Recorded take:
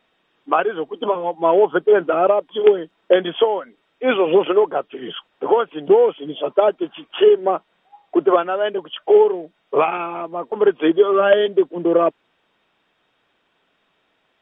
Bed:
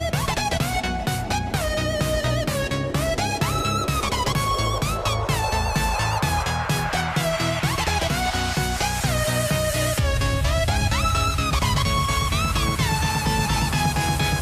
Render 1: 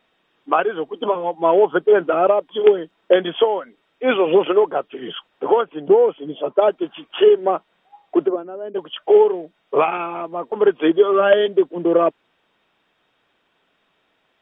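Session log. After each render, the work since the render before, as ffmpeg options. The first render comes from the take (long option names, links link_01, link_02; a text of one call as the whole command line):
ffmpeg -i in.wav -filter_complex "[0:a]asettb=1/sr,asplit=3[link_01][link_02][link_03];[link_01]atrim=end=5.614[link_04];[link_02]atrim=start=5.61:end=6.62,asetpts=PTS-STARTPTS,afade=type=in:duration=0.004:curve=qsin,afade=type=out:start_time=1.006:duration=0.004:curve=qsin,highshelf=frequency=2400:gain=-10[link_05];[link_03]atrim=start=6.616[link_06];[link_04][link_05]acrossfade=duration=0.004:curve1=hsin:curve2=qsin[link_07];[link_07][link_06]acrossfade=duration=0.004:curve1=qsin:curve2=hsin,asplit=3[link_08][link_09][link_10];[link_08]afade=type=out:start_time=8.27:duration=0.02[link_11];[link_09]bandpass=frequency=270:width_type=q:width=1.9,afade=type=in:start_time=8.27:duration=0.02,afade=type=out:start_time=8.74:duration=0.02[link_12];[link_10]afade=type=in:start_time=8.74:duration=0.02[link_13];[link_11][link_12][link_13]amix=inputs=3:normalize=0" out.wav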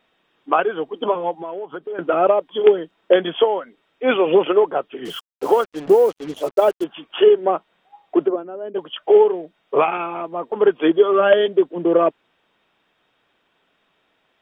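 ffmpeg -i in.wav -filter_complex "[0:a]asettb=1/sr,asplit=3[link_01][link_02][link_03];[link_01]atrim=end=1.324[link_04];[link_02]atrim=start=1.32:end=1.99,asetpts=PTS-STARTPTS,afade=type=in:duration=0.004:curve=qsin,afade=type=out:start_time=0.666:duration=0.004:curve=qsin,acompressor=threshold=-28dB:ratio=5:attack=3.2:release=140:knee=1:detection=peak[link_05];[link_03]atrim=start=1.986[link_06];[link_04][link_05]acrossfade=duration=0.004:curve1=hsin:curve2=qsin[link_07];[link_07][link_06]acrossfade=duration=0.004:curve1=qsin:curve2=hsin,asettb=1/sr,asplit=3[link_08][link_09][link_10];[link_08]atrim=end=5.054[link_11];[link_09]atrim=start=5.05:end=6.84,asetpts=PTS-STARTPTS,afade=type=in:duration=0.004:curve=qsin,afade=type=out:start_time=1.786:duration=0.004:curve=qsin,acrusher=bits=5:mix=0:aa=0.5[link_12];[link_10]atrim=start=6.836[link_13];[link_11][link_12]acrossfade=duration=0.004:curve1=hsin:curve2=qsin[link_14];[link_14][link_13]acrossfade=duration=0.004:curve1=qsin:curve2=hsin" out.wav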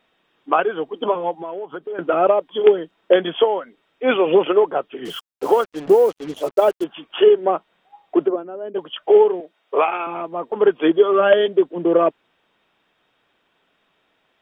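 ffmpeg -i in.wav -filter_complex "[0:a]asettb=1/sr,asplit=3[link_01][link_02][link_03];[link_01]atrim=end=9.404[link_04];[link_02]atrim=start=9.4:end=10.07,asetpts=PTS-STARTPTS,afade=type=in:duration=0.004:curve=qsin,afade=type=out:start_time=0.666:duration=0.004:curve=qsin,highpass=370[link_05];[link_03]atrim=start=10.066[link_06];[link_04][link_05]acrossfade=duration=0.004:curve1=hsin:curve2=qsin[link_07];[link_07][link_06]acrossfade=duration=0.004:curve1=qsin:curve2=hsin" out.wav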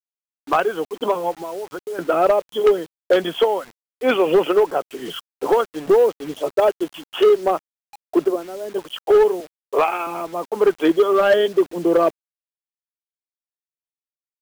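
ffmpeg -i in.wav -af "asoftclip=type=hard:threshold=-9dB,acrusher=bits=6:mix=0:aa=0.000001" out.wav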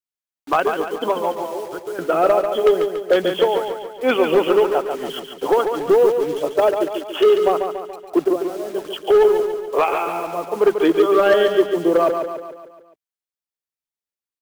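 ffmpeg -i in.wav -af "aecho=1:1:142|284|426|568|710|852:0.473|0.246|0.128|0.0665|0.0346|0.018" out.wav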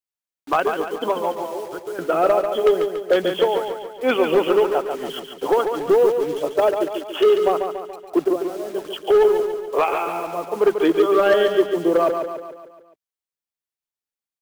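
ffmpeg -i in.wav -af "volume=-1.5dB" out.wav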